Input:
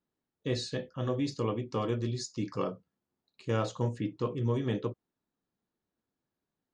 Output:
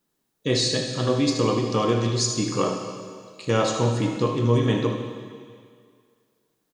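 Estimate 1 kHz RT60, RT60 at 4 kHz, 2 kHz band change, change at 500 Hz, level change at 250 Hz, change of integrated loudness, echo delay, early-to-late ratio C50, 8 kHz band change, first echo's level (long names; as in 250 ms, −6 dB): 2.1 s, 2.0 s, +12.0 dB, +10.0 dB, +10.0 dB, +10.0 dB, 76 ms, 3.5 dB, +17.5 dB, −9.5 dB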